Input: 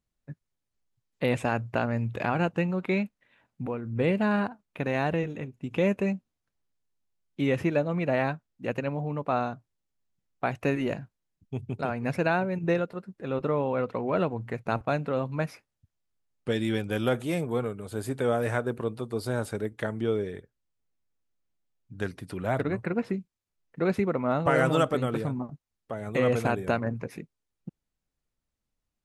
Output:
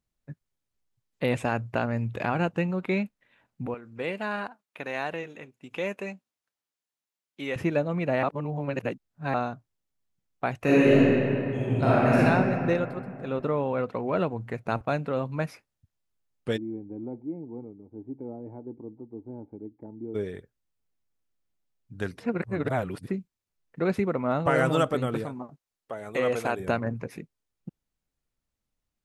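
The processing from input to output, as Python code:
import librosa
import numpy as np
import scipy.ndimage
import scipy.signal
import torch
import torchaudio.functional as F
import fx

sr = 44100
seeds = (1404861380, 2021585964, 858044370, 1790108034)

y = fx.highpass(x, sr, hz=780.0, slope=6, at=(3.74, 7.56))
y = fx.reverb_throw(y, sr, start_s=10.58, length_s=1.61, rt60_s=2.7, drr_db=-9.5)
y = fx.formant_cascade(y, sr, vowel='u', at=(16.56, 20.14), fade=0.02)
y = fx.bass_treble(y, sr, bass_db=-11, treble_db=1, at=(25.24, 26.6))
y = fx.edit(y, sr, fx.reverse_span(start_s=8.23, length_s=1.11),
    fx.reverse_span(start_s=22.2, length_s=0.88), tone=tone)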